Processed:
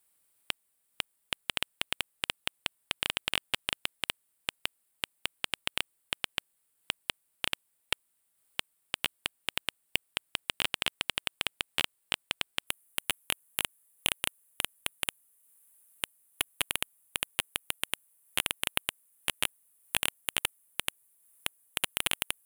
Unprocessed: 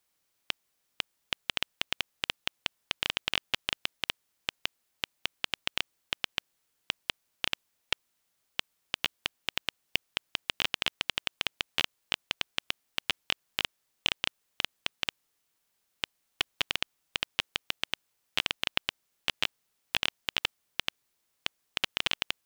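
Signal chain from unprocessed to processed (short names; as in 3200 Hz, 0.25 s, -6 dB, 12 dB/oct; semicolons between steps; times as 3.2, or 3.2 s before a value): resonant high shelf 7400 Hz +6 dB, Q 3, from 12.67 s +13 dB; transient shaper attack 0 dB, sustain -4 dB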